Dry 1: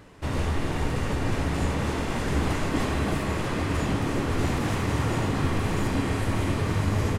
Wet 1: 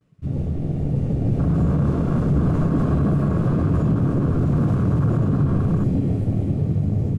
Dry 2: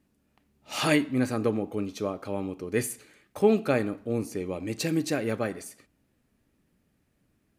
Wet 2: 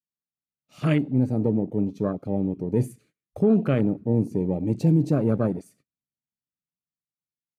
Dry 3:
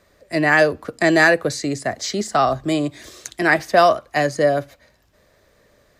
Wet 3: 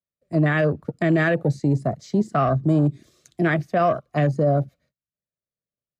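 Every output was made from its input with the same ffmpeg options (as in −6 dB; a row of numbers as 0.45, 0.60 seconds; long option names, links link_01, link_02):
-af "superequalizer=9b=0.447:11b=0.708,agate=range=-25dB:threshold=-52dB:ratio=16:detection=peak,equalizer=frequency=150:width=1.2:gain=13.5,dynaudnorm=framelen=320:gausssize=9:maxgain=12dB,afwtdn=0.0562,alimiter=limit=-8dB:level=0:latency=1:release=27,volume=-3.5dB"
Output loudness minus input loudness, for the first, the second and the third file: +6.5, +4.5, −3.5 LU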